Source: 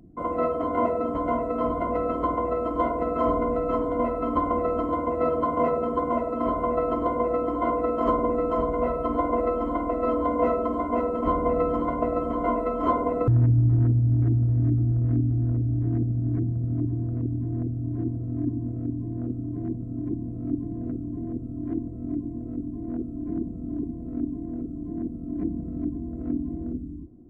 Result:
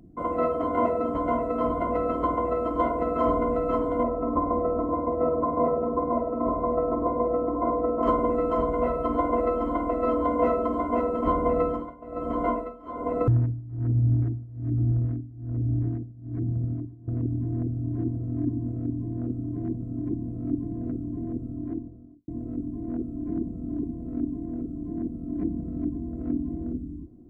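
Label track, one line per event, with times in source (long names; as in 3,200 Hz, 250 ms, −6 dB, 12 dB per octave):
4.030000	8.030000	Savitzky-Golay smoothing over 65 samples
11.570000	17.080000	amplitude tremolo 1.2 Hz, depth 91%
21.410000	22.280000	fade out and dull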